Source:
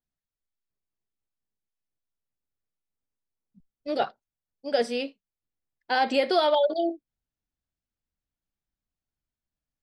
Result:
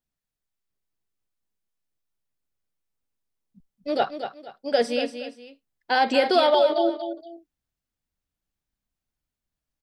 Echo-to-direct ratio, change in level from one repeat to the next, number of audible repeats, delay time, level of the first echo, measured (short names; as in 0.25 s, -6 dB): -8.5 dB, -10.0 dB, 2, 0.236 s, -9.0 dB